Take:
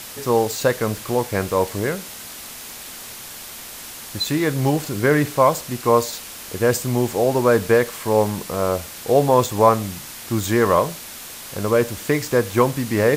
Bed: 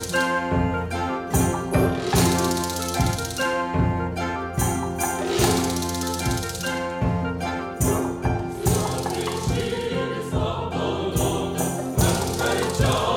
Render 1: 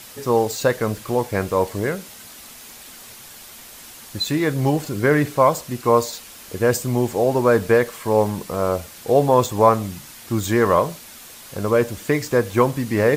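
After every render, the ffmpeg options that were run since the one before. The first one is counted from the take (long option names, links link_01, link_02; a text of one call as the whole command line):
ffmpeg -i in.wav -af "afftdn=noise_reduction=6:noise_floor=-36" out.wav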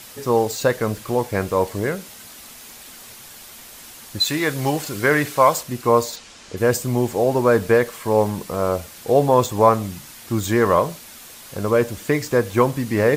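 ffmpeg -i in.wav -filter_complex "[0:a]asettb=1/sr,asplit=3[link_01][link_02][link_03];[link_01]atrim=end=4.204[link_04];[link_02]atrim=start=4.2:end=5.63,asetpts=PTS-STARTPTS,afade=type=in:duration=0.004:curve=qsin,afade=type=out:start_time=1.426:duration=0.004:curve=qsin,tiltshelf=frequency=630:gain=-5[link_05];[link_03]atrim=start=5.626[link_06];[link_04][link_05]acrossfade=duration=0.004:curve1=hsin:curve2=qsin[link_07];[link_07][link_06]acrossfade=duration=0.004:curve1=qsin:curve2=hsin,asplit=3[link_08][link_09][link_10];[link_08]afade=type=out:start_time=6.15:duration=0.02[link_11];[link_09]lowpass=frequency=7400:width=0.5412,lowpass=frequency=7400:width=1.3066,afade=type=in:start_time=6.15:duration=0.02,afade=type=out:start_time=6.56:duration=0.02[link_12];[link_10]afade=type=in:start_time=6.56:duration=0.02[link_13];[link_11][link_12][link_13]amix=inputs=3:normalize=0" out.wav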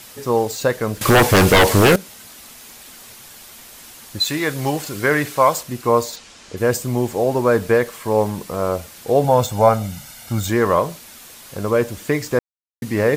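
ffmpeg -i in.wav -filter_complex "[0:a]asettb=1/sr,asplit=3[link_01][link_02][link_03];[link_01]atrim=end=1.014[link_04];[link_02]atrim=start=1.01:end=1.96,asetpts=PTS-STARTPTS,afade=type=in:duration=0.004:curve=qsin,afade=type=out:start_time=0.946:duration=0.004:curve=qsin,aeval=exprs='0.447*sin(PI/2*4.47*val(0)/0.447)':channel_layout=same[link_05];[link_03]atrim=start=1.956[link_06];[link_04][link_05]acrossfade=duration=0.004:curve1=hsin:curve2=qsin[link_07];[link_07][link_06]acrossfade=duration=0.004:curve1=qsin:curve2=hsin,asettb=1/sr,asplit=3[link_08][link_09][link_10];[link_08]atrim=end=9.244[link_11];[link_09]atrim=start=9.24:end=10.5,asetpts=PTS-STARTPTS,afade=type=in:duration=0.004:curve=qsin,afade=type=out:start_time=1.256:duration=0.004:curve=qsin,aecho=1:1:1.4:0.65,atrim=end_sample=55566[link_12];[link_10]atrim=start=10.496[link_13];[link_11][link_12]acrossfade=duration=0.004:curve1=hsin:curve2=qsin[link_14];[link_14][link_13]acrossfade=duration=0.004:curve1=qsin:curve2=hsin,asplit=3[link_15][link_16][link_17];[link_15]atrim=end=12.39,asetpts=PTS-STARTPTS,afade=type=out:start_time=12.386:duration=0.004:curve=hsin[link_18];[link_16]atrim=start=12.39:end=12.82,asetpts=PTS-STARTPTS,volume=0[link_19];[link_17]atrim=start=12.82,asetpts=PTS-STARTPTS,afade=type=in:duration=0.004:curve=hsin[link_20];[link_18][link_19][link_20]concat=n=3:v=0:a=1" out.wav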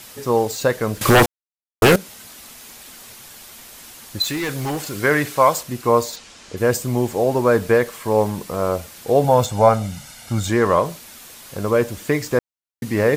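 ffmpeg -i in.wav -filter_complex "[0:a]asettb=1/sr,asplit=3[link_01][link_02][link_03];[link_01]atrim=end=4.224[link_04];[link_02]atrim=start=4.22:end=4.96,asetpts=PTS-STARTPTS,afade=type=in:duration=0.004:curve=qsin,afade=type=out:start_time=0.736:duration=0.004:curve=qsin,asoftclip=type=hard:threshold=-20.5dB[link_05];[link_03]atrim=start=4.956[link_06];[link_04][link_05]acrossfade=duration=0.004:curve1=hsin:curve2=qsin[link_07];[link_07][link_06]acrossfade=duration=0.004:curve1=qsin:curve2=hsin,asettb=1/sr,asplit=3[link_08][link_09][link_10];[link_08]atrim=end=9.454[link_11];[link_09]atrim=start=9.45:end=10.85,asetpts=PTS-STARTPTS,afade=type=in:duration=0.004:curve=qsin,afade=type=out:start_time=1.396:duration=0.004:curve=qsin,lowpass=11000[link_12];[link_10]atrim=start=10.846[link_13];[link_11][link_12]acrossfade=duration=0.004:curve1=hsin:curve2=qsin[link_14];[link_14][link_13]acrossfade=duration=0.004:curve1=qsin:curve2=hsin,asplit=3[link_15][link_16][link_17];[link_15]atrim=end=1.26,asetpts=PTS-STARTPTS,afade=type=out:start_time=1.256:duration=0.004:curve=hsin[link_18];[link_16]atrim=start=1.26:end=1.82,asetpts=PTS-STARTPTS,volume=0[link_19];[link_17]atrim=start=1.82,asetpts=PTS-STARTPTS,afade=type=in:duration=0.004:curve=hsin[link_20];[link_18][link_19][link_20]concat=n=3:v=0:a=1" out.wav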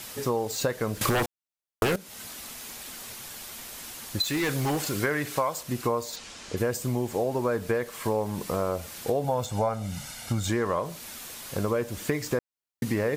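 ffmpeg -i in.wav -af "acompressor=threshold=-24dB:ratio=6" out.wav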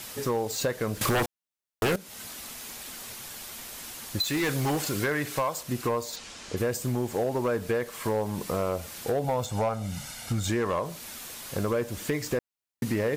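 ffmpeg -i in.wav -af "volume=20.5dB,asoftclip=hard,volume=-20.5dB" out.wav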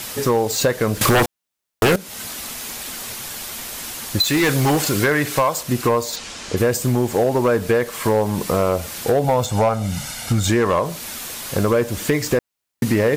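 ffmpeg -i in.wav -af "volume=10dB" out.wav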